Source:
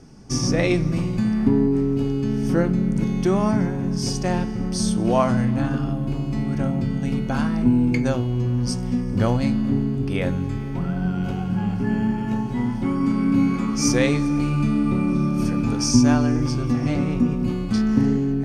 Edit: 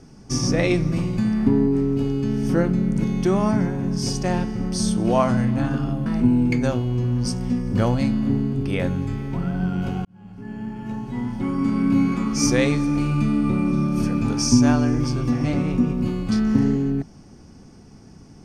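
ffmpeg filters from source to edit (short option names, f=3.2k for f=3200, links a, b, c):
-filter_complex "[0:a]asplit=3[a][b][c];[a]atrim=end=6.062[d];[b]atrim=start=7.478:end=11.47,asetpts=PTS-STARTPTS,afade=t=out:st=3.988:d=0.004:c=hsin[e];[c]atrim=start=11.47,asetpts=PTS-STARTPTS,afade=t=in:d=1.75[f];[e][f]concat=n=2:v=0:a=1[g];[d][g]acrossfade=d=0.004:c1=hsin:c2=hsin"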